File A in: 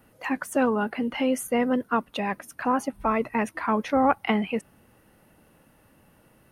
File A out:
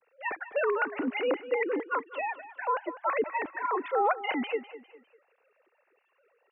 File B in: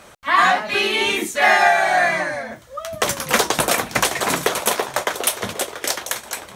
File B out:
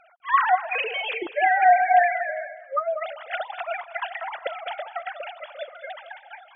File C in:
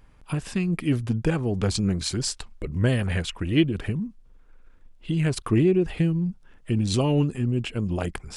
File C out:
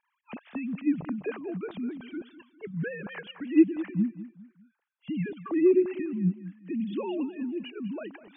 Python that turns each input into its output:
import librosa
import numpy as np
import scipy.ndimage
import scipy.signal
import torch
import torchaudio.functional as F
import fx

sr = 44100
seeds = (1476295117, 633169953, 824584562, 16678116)

y = fx.sine_speech(x, sr)
y = fx.echo_feedback(y, sr, ms=201, feedback_pct=38, wet_db=-15.0)
y = y * librosa.db_to_amplitude(-5.0)